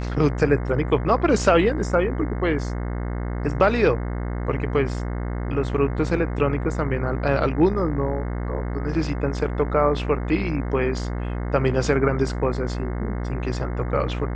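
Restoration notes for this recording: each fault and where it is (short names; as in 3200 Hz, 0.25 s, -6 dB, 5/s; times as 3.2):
buzz 60 Hz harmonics 36 -27 dBFS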